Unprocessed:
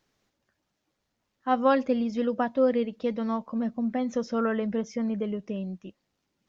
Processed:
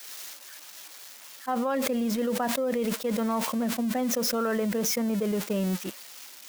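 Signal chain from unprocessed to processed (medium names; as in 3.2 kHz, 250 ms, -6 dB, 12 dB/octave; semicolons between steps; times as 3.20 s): zero-crossing glitches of -28.5 dBFS; treble shelf 2.5 kHz -8 dB; expander -26 dBFS; bass shelf 260 Hz -10.5 dB; level flattener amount 100%; trim -6 dB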